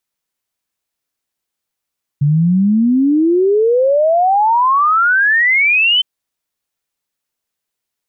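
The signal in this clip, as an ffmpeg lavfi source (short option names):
-f lavfi -i "aevalsrc='0.355*clip(min(t,3.81-t)/0.01,0,1)*sin(2*PI*140*3.81/log(3100/140)*(exp(log(3100/140)*t/3.81)-1))':d=3.81:s=44100"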